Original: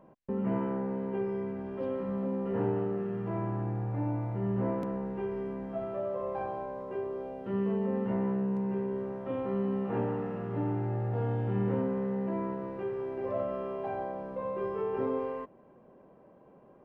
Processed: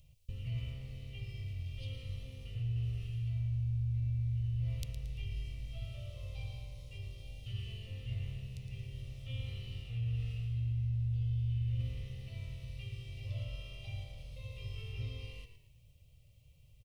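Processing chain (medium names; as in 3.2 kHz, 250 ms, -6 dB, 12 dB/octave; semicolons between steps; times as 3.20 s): inverse Chebyshev band-stop 190–1700 Hz, stop band 40 dB; reverse; compression 6:1, threshold -49 dBFS, peak gain reduction 11 dB; reverse; frequency-shifting echo 113 ms, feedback 34%, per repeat -48 Hz, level -10 dB; trim +16 dB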